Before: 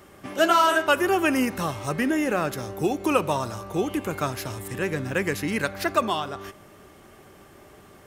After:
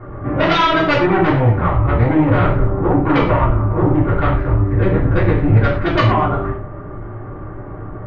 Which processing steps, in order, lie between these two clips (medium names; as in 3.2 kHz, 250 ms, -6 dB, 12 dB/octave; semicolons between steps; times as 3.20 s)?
octave divider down 1 oct, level +1 dB; low-pass 1.5 kHz 24 dB/octave; bass shelf 91 Hz +12 dB; in parallel at +2.5 dB: compression, threshold -28 dBFS, peak gain reduction 13 dB; on the sum: sine folder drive 10 dB, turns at -4 dBFS; gated-style reverb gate 150 ms falling, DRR -7 dB; trim -13 dB